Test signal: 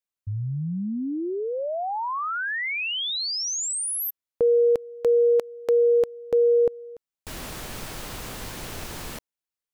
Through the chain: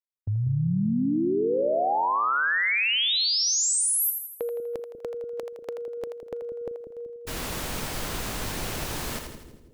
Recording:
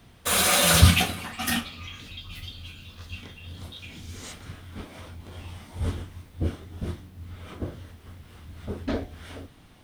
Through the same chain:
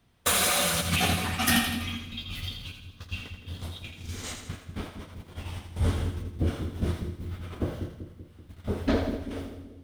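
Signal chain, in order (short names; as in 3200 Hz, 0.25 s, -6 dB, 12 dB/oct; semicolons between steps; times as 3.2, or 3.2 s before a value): gate -40 dBFS, range -16 dB; negative-ratio compressor -25 dBFS, ratio -1; on a send: split-band echo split 470 Hz, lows 0.192 s, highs 82 ms, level -6.5 dB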